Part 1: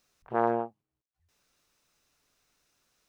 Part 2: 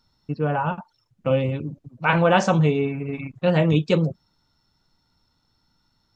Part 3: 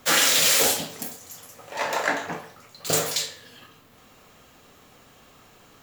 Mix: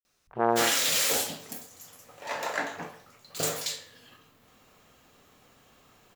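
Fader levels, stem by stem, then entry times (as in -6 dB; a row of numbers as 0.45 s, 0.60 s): +1.5 dB, mute, -6.5 dB; 0.05 s, mute, 0.50 s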